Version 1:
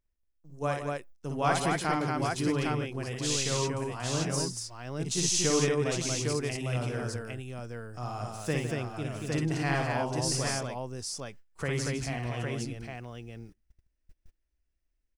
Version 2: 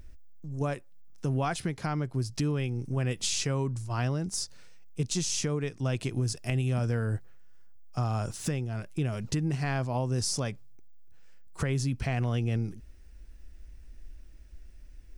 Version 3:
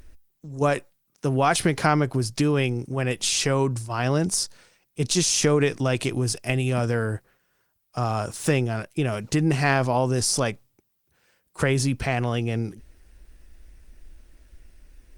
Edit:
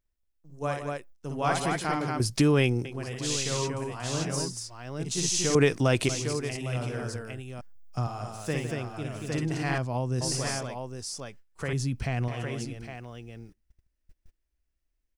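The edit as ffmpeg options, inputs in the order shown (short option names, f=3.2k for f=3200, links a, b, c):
-filter_complex "[2:a]asplit=2[a][b];[1:a]asplit=3[c][d][e];[0:a]asplit=6[f][g][h][i][j][k];[f]atrim=end=2.202[l];[a]atrim=start=2.198:end=2.852[m];[g]atrim=start=2.848:end=5.552[n];[b]atrim=start=5.548:end=6.092[o];[h]atrim=start=6.088:end=7.612[p];[c]atrim=start=7.608:end=8.072[q];[i]atrim=start=8.068:end=9.782[r];[d]atrim=start=9.778:end=10.212[s];[j]atrim=start=10.208:end=11.732[t];[e]atrim=start=11.728:end=12.282[u];[k]atrim=start=12.278[v];[l][m]acrossfade=d=0.004:c1=hsin:c2=hsin[w];[w][n]acrossfade=d=0.004:c1=hsin:c2=hsin[x];[x][o]acrossfade=d=0.004:c1=hsin:c2=hsin[y];[y][p]acrossfade=d=0.004:c1=hsin:c2=hsin[z];[z][q]acrossfade=d=0.004:c1=hsin:c2=hsin[aa];[aa][r]acrossfade=d=0.004:c1=hsin:c2=hsin[ab];[ab][s]acrossfade=d=0.004:c1=hsin:c2=hsin[ac];[ac][t]acrossfade=d=0.004:c1=hsin:c2=hsin[ad];[ad][u]acrossfade=d=0.004:c1=hsin:c2=hsin[ae];[ae][v]acrossfade=d=0.004:c1=hsin:c2=hsin"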